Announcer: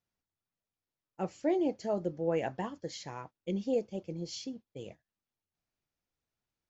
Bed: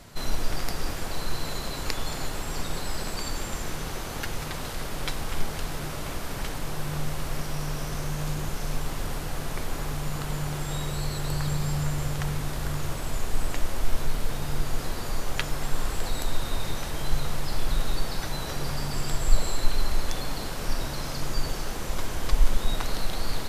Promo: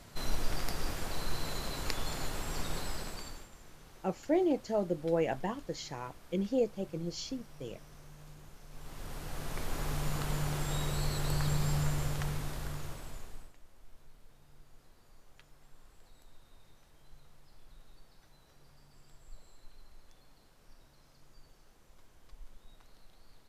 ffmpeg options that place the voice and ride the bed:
ffmpeg -i stem1.wav -i stem2.wav -filter_complex "[0:a]adelay=2850,volume=1dB[link_01];[1:a]volume=13.5dB,afade=type=out:start_time=2.78:duration=0.71:silence=0.141254,afade=type=in:start_time=8.7:duration=1.29:silence=0.112202,afade=type=out:start_time=11.76:duration=1.77:silence=0.0421697[link_02];[link_01][link_02]amix=inputs=2:normalize=0" out.wav

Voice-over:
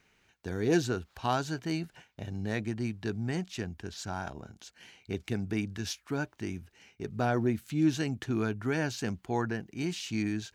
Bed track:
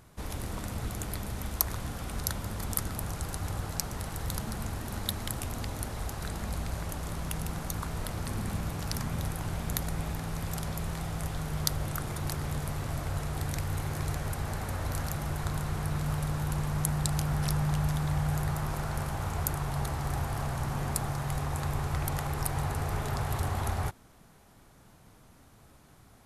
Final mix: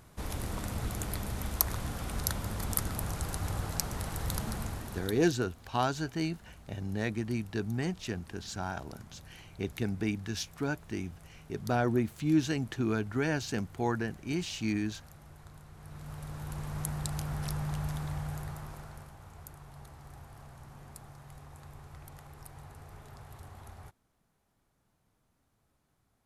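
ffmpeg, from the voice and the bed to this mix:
ffmpeg -i stem1.wav -i stem2.wav -filter_complex "[0:a]adelay=4500,volume=0dB[link_01];[1:a]volume=13.5dB,afade=type=out:start_time=4.5:duration=0.84:silence=0.105925,afade=type=in:start_time=15.75:duration=1.07:silence=0.211349,afade=type=out:start_time=17.97:duration=1.18:silence=0.251189[link_02];[link_01][link_02]amix=inputs=2:normalize=0" out.wav

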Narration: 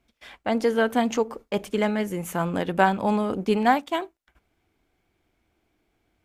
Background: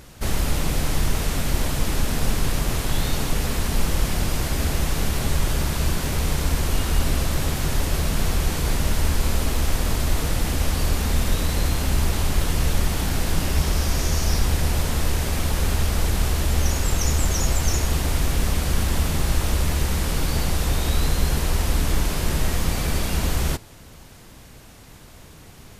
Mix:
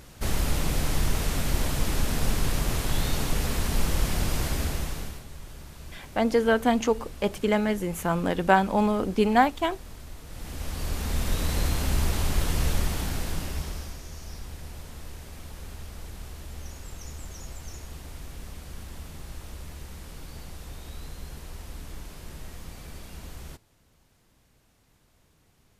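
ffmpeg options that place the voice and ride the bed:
ffmpeg -i stem1.wav -i stem2.wav -filter_complex "[0:a]adelay=5700,volume=0dB[link_01];[1:a]volume=13.5dB,afade=type=out:start_time=4.46:duration=0.78:silence=0.133352,afade=type=in:start_time=10.26:duration=1.27:silence=0.141254,afade=type=out:start_time=12.68:duration=1.32:silence=0.177828[link_02];[link_01][link_02]amix=inputs=2:normalize=0" out.wav

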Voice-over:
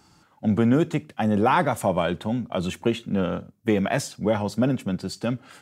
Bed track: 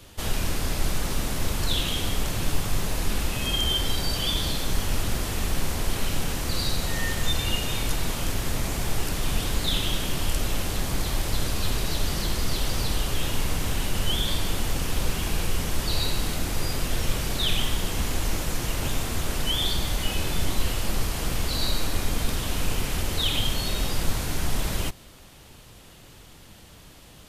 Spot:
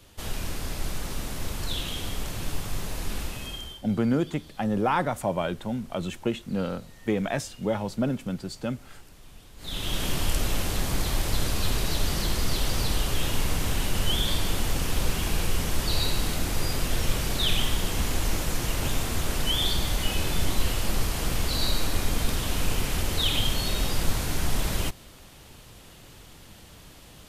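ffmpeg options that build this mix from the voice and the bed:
ffmpeg -i stem1.wav -i stem2.wav -filter_complex "[0:a]adelay=3400,volume=-4.5dB[link_01];[1:a]volume=18dB,afade=type=out:start_time=3.21:duration=0.6:silence=0.125893,afade=type=in:start_time=9.57:duration=0.49:silence=0.0668344[link_02];[link_01][link_02]amix=inputs=2:normalize=0" out.wav

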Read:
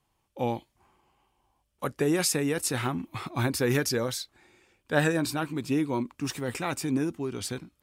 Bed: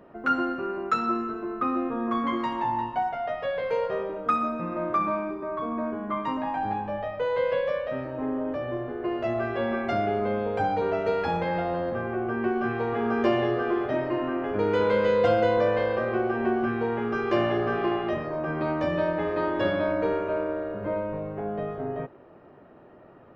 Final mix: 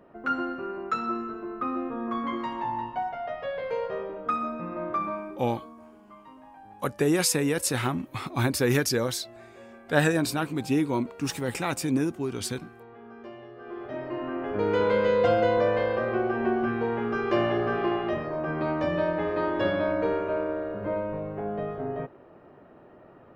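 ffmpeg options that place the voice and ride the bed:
ffmpeg -i stem1.wav -i stem2.wav -filter_complex "[0:a]adelay=5000,volume=2dB[link_01];[1:a]volume=16.5dB,afade=type=out:start_time=4.96:duration=0.84:silence=0.141254,afade=type=in:start_time=13.55:duration=1.18:silence=0.1[link_02];[link_01][link_02]amix=inputs=2:normalize=0" out.wav

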